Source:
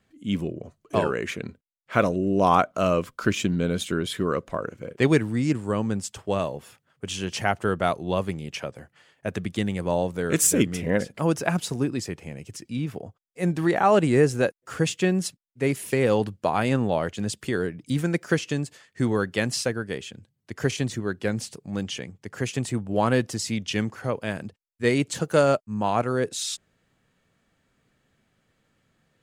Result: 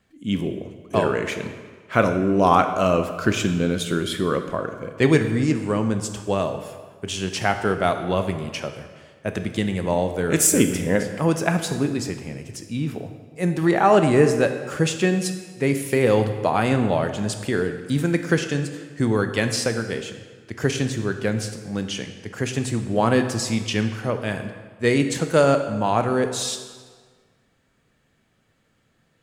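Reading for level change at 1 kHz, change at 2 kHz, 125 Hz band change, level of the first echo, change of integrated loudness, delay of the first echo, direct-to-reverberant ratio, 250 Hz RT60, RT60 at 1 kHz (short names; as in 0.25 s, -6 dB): +3.0 dB, +3.5 dB, +3.0 dB, none, +3.0 dB, none, 7.0 dB, 1.6 s, 1.6 s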